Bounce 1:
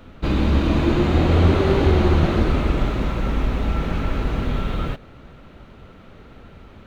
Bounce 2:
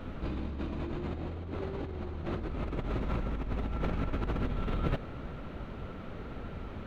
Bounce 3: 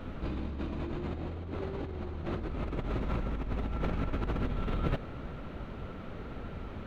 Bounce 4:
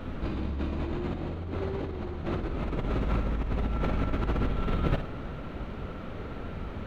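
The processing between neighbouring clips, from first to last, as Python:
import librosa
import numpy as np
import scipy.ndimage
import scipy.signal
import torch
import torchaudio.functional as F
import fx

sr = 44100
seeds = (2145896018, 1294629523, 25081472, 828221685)

y1 = fx.high_shelf(x, sr, hz=3000.0, db=-8.5)
y1 = fx.over_compress(y1, sr, threshold_db=-28.0, ratio=-1.0)
y1 = F.gain(torch.from_numpy(y1), -6.0).numpy()
y2 = y1
y3 = fx.room_flutter(y2, sr, wall_m=9.7, rt60_s=0.37)
y3 = F.gain(torch.from_numpy(y3), 3.5).numpy()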